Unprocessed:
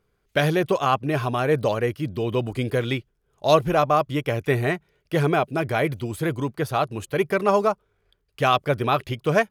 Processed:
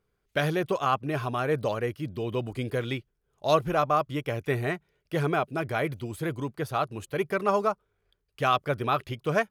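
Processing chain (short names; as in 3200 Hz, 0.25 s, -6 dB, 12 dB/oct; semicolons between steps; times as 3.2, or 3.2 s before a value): dynamic EQ 1300 Hz, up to +4 dB, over -34 dBFS, Q 2.8; gain -6 dB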